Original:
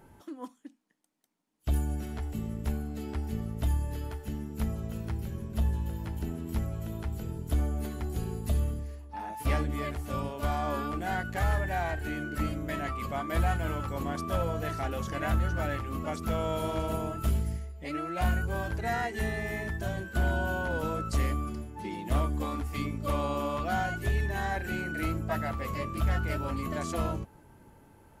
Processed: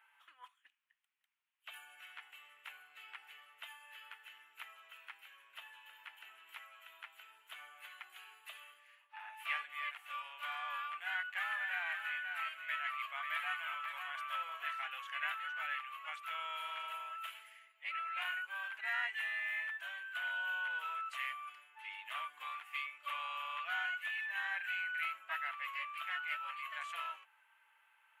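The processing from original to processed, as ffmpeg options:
ffmpeg -i in.wav -filter_complex "[0:a]asettb=1/sr,asplit=3[link_01][link_02][link_03];[link_01]atrim=end=11.044[link_04];[link_02]atrim=start=11.04:end=14.73,asetpts=PTS-STARTPTS,afade=type=in:duration=0.004:curve=qsin,afade=type=out:start_time=3.686:duration=0.004:curve=qsin,aecho=1:1:540:0.422,atrim=end_sample=162729[link_05];[link_03]atrim=start=14.726[link_06];[link_04][link_05]acrossfade=duration=0.004:curve1=hsin:curve2=qsin[link_07];[link_07][link_06]acrossfade=duration=0.004:curve1=qsin:curve2=hsin,highpass=frequency=1200:width=0.5412,highpass=frequency=1200:width=1.3066,highshelf=frequency=3800:width_type=q:width=3:gain=-11,volume=-3dB" out.wav

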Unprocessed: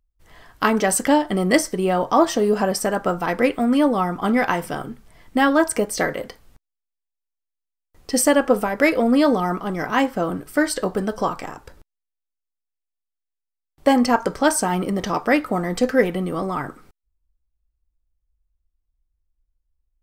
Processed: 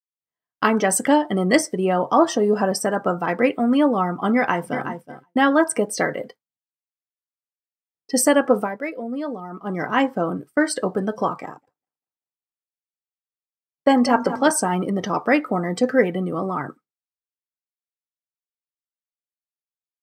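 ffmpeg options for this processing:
ffmpeg -i in.wav -filter_complex "[0:a]asplit=2[link_01][link_02];[link_02]afade=type=in:start_time=4.35:duration=0.01,afade=type=out:start_time=4.86:duration=0.01,aecho=0:1:370|740|1110:0.375837|0.0751675|0.0150335[link_03];[link_01][link_03]amix=inputs=2:normalize=0,asettb=1/sr,asplit=3[link_04][link_05][link_06];[link_04]atrim=end=11.424[link_07];[link_05]atrim=start=11.42:end=14.51,asetpts=PTS-STARTPTS,afade=type=in:duration=0.004:curve=qsin,afade=type=out:start_time=3.086:duration=0.004:curve=qsin,aecho=1:1:196|392|588|784|980:0.266|0.136|0.0692|0.0353|0.018,atrim=end_sample=136269[link_08];[link_06]atrim=start=14.506[link_09];[link_07][link_08]acrossfade=duration=0.004:curve1=hsin:curve2=qsin[link_10];[link_10][link_09]acrossfade=duration=0.004:curve1=qsin:curve2=hsin,asplit=3[link_11][link_12][link_13];[link_11]atrim=end=8.82,asetpts=PTS-STARTPTS,afade=type=out:start_time=8.6:duration=0.22:silence=0.266073[link_14];[link_12]atrim=start=8.82:end=9.51,asetpts=PTS-STARTPTS,volume=-11.5dB[link_15];[link_13]atrim=start=9.51,asetpts=PTS-STARTPTS,afade=type=in:duration=0.22:silence=0.266073[link_16];[link_14][link_15][link_16]concat=n=3:v=0:a=1,highpass=frequency=110:width=0.5412,highpass=frequency=110:width=1.3066,afftdn=noise_reduction=13:noise_floor=-34,agate=range=-33dB:threshold=-32dB:ratio=3:detection=peak" out.wav

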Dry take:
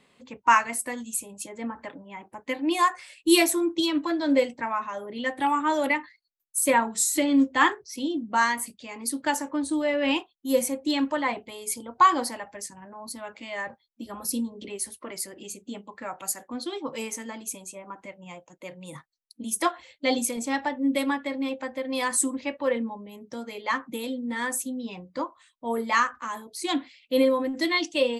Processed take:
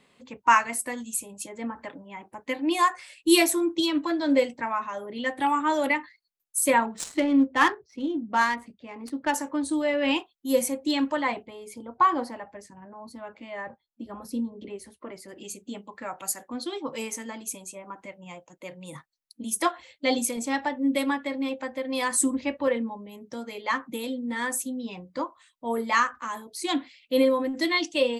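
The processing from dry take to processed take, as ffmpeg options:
ffmpeg -i in.wav -filter_complex "[0:a]asettb=1/sr,asplit=3[link_01][link_02][link_03];[link_01]atrim=end=6.854[link_04];[link_02]atrim=start=6.85:end=9.34,asetpts=PTS-STARTPTS,afade=type=in:duration=0.004:curve=qsin,afade=type=out:start_time=2.486:duration=0.004:curve=qsin,adynamicsmooth=sensitivity=2:basefreq=1700[link_05];[link_03]atrim=start=9.336[link_06];[link_04][link_05]acrossfade=duration=0.004:curve1=hsin:curve2=qsin[link_07];[link_07][link_06]acrossfade=duration=0.004:curve1=qsin:curve2=hsin,asplit=3[link_08][link_09][link_10];[link_08]afade=type=out:start_time=11.42:duration=0.02[link_11];[link_09]lowpass=frequency=1200:poles=1,afade=type=in:start_time=11.42:duration=0.02,afade=type=out:start_time=15.28:duration=0.02[link_12];[link_10]afade=type=in:start_time=15.28:duration=0.02[link_13];[link_11][link_12][link_13]amix=inputs=3:normalize=0,asettb=1/sr,asplit=3[link_14][link_15][link_16];[link_14]atrim=end=22.194[link_17];[link_15]atrim=start=22.19:end=22.68,asetpts=PTS-STARTPTS,afade=type=in:duration=0.004:curve=qsin,afade=type=out:start_time=0.486:duration=0.004:curve=qsin,lowshelf=frequency=200:gain=10.5[link_18];[link_16]atrim=start=22.676[link_19];[link_17][link_18]acrossfade=duration=0.004:curve1=hsin:curve2=qsin[link_20];[link_20][link_19]acrossfade=duration=0.004:curve1=qsin:curve2=hsin" out.wav

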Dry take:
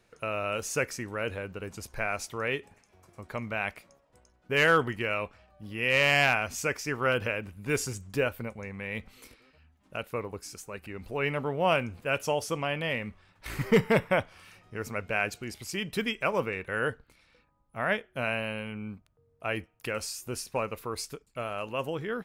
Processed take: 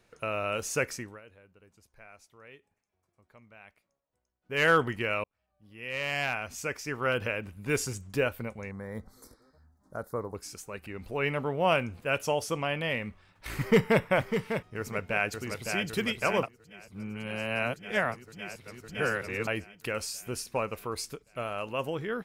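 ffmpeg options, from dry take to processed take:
ffmpeg -i in.wav -filter_complex "[0:a]asettb=1/sr,asplit=3[link_01][link_02][link_03];[link_01]atrim=end=8.714[link_04];[link_02]atrim=start=8.71:end=10.35,asetpts=PTS-STARTPTS,afade=type=in:duration=0.004:curve=qsin,afade=type=out:start_time=1.636:duration=0.004:curve=qsin,asuperstop=centerf=2700:order=4:qfactor=0.83[link_05];[link_03]atrim=start=10.346[link_06];[link_04][link_05]acrossfade=duration=0.004:curve1=hsin:curve2=qsin[link_07];[link_07][link_06]acrossfade=duration=0.004:curve1=qsin:curve2=hsin,asplit=2[link_08][link_09];[link_09]afade=type=in:start_time=13.55:duration=0.01,afade=type=out:start_time=14.02:duration=0.01,aecho=0:1:600|1200|1800:0.398107|0.0995268|0.0248817[link_10];[link_08][link_10]amix=inputs=2:normalize=0,asplit=2[link_11][link_12];[link_12]afade=type=in:start_time=14.77:duration=0.01,afade=type=out:start_time=15.89:duration=0.01,aecho=0:1:560|1120|1680|2240|2800|3360|3920|4480|5040|5600|6160|6720:0.562341|0.393639|0.275547|0.192883|0.135018|0.0945127|0.0661589|0.0463112|0.0324179|0.0226925|0.0158848|0.0111193[link_13];[link_11][link_13]amix=inputs=2:normalize=0,asplit=6[link_14][link_15][link_16][link_17][link_18][link_19];[link_14]atrim=end=1.21,asetpts=PTS-STARTPTS,afade=type=out:start_time=0.93:duration=0.28:silence=0.0891251[link_20];[link_15]atrim=start=1.21:end=4.41,asetpts=PTS-STARTPTS,volume=-21dB[link_21];[link_16]atrim=start=4.41:end=5.24,asetpts=PTS-STARTPTS,afade=type=in:duration=0.28:silence=0.0891251,afade=type=out:start_time=0.826:duration=0.004:curve=hsin[link_22];[link_17]atrim=start=5.24:end=16.432,asetpts=PTS-STARTPTS,afade=type=in:duration=2.3[link_23];[link_18]atrim=start=16.428:end=19.472,asetpts=PTS-STARTPTS,areverse[link_24];[link_19]atrim=start=19.468[link_25];[link_20][link_21][link_22][link_23]concat=n=4:v=0:a=1[link_26];[link_26][link_24]acrossfade=duration=0.004:curve1=hsin:curve2=hsin[link_27];[link_27][link_25]acrossfade=duration=0.004:curve1=hsin:curve2=hsin" out.wav

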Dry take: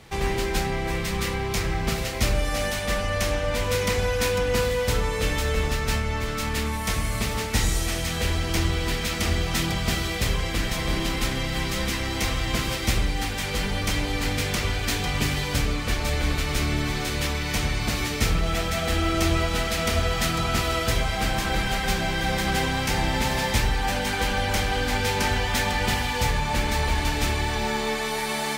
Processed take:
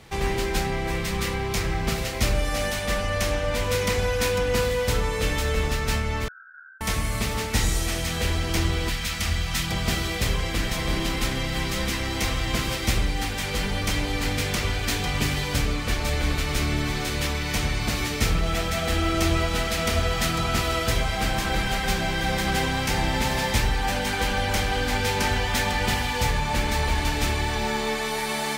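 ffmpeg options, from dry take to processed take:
ffmpeg -i in.wav -filter_complex "[0:a]asettb=1/sr,asplit=3[link_01][link_02][link_03];[link_01]atrim=end=6.284[link_04];[link_02]atrim=start=6.28:end=6.81,asetpts=PTS-STARTPTS,afade=type=in:duration=0.004:curve=qsin,afade=type=out:start_time=0.526:duration=0.004:curve=qsin,asuperpass=centerf=1500:order=12:qfactor=5.8[link_05];[link_03]atrim=start=6.806[link_06];[link_04][link_05]acrossfade=duration=0.004:curve1=hsin:curve2=qsin[link_07];[link_07][link_06]acrossfade=duration=0.004:curve1=qsin:curve2=hsin,asettb=1/sr,asplit=3[link_08][link_09][link_10];[link_08]atrim=end=8.894[link_11];[link_09]atrim=start=8.89:end=9.71,asetpts=PTS-STARTPTS,afade=type=in:duration=0.004:curve=qsin,afade=type=out:start_time=0.816:duration=0.004:curve=qsin,equalizer=frequency=390:width_type=o:width=1.6:gain=-12[link_12];[link_10]atrim=start=9.706[link_13];[link_11][link_12]acrossfade=duration=0.004:curve1=hsin:curve2=qsin[link_14];[link_14][link_13]acrossfade=duration=0.004:curve1=qsin:curve2=hsin" out.wav

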